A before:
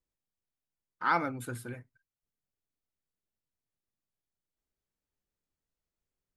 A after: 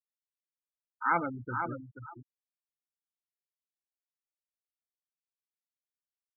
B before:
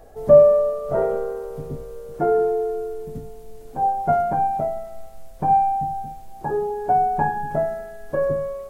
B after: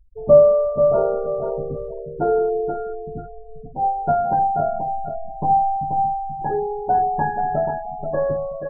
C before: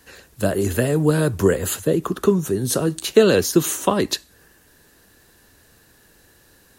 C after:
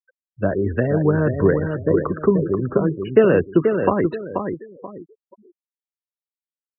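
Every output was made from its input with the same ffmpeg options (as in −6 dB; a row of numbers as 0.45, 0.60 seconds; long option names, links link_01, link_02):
-af "lowpass=frequency=2300:width=0.5412,lowpass=frequency=2300:width=1.3066,aecho=1:1:483|966|1449|1932:0.501|0.15|0.0451|0.0135,afftfilt=real='re*gte(hypot(re,im),0.0398)':imag='im*gte(hypot(re,im),0.0398)':win_size=1024:overlap=0.75"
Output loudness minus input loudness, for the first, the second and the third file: −0.5, +0.5, 0.0 LU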